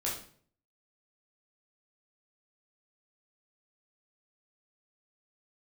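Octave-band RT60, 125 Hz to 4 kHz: 0.70, 0.60, 0.55, 0.45, 0.45, 0.40 s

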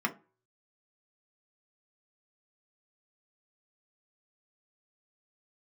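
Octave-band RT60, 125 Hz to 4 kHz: 0.40, 0.35, 0.40, 0.35, 0.25, 0.15 s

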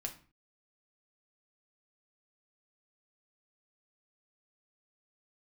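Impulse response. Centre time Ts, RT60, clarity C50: 11 ms, 0.40 s, 12.5 dB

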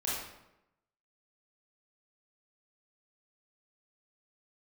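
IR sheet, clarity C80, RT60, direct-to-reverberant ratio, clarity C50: 3.5 dB, 0.90 s, -7.5 dB, -1.0 dB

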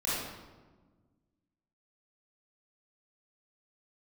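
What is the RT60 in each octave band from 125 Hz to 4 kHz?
2.1, 2.1, 1.5, 1.2, 1.0, 0.80 s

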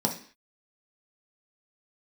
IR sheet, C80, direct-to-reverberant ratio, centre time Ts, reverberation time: 15.0 dB, 0.5 dB, 16 ms, 0.45 s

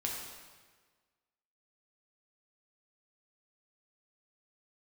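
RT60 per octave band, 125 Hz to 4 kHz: 1.5, 1.5, 1.5, 1.4, 1.4, 1.2 s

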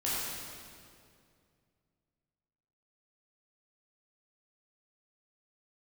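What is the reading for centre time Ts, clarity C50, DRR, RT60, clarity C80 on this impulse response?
0.145 s, -3.5 dB, -9.0 dB, 2.3 s, -1.5 dB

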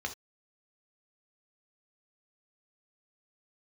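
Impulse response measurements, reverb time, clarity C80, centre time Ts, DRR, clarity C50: not exponential, 21.5 dB, 9 ms, 4.0 dB, 12.5 dB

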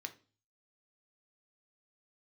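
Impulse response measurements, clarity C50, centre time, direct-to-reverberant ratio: 16.0 dB, 6 ms, 6.5 dB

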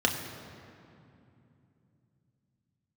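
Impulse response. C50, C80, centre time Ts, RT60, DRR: 6.5 dB, 7.0 dB, 49 ms, 2.8 s, 1.5 dB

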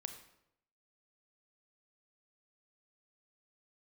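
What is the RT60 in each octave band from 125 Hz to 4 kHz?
0.90, 0.80, 0.85, 0.75, 0.65, 0.60 s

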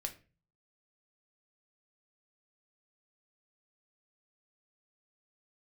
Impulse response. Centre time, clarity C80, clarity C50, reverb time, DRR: 8 ms, 20.0 dB, 14.0 dB, 0.35 s, 4.5 dB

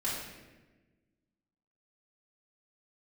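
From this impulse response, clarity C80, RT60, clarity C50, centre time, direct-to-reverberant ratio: 3.5 dB, 1.2 s, 0.5 dB, 71 ms, -8.5 dB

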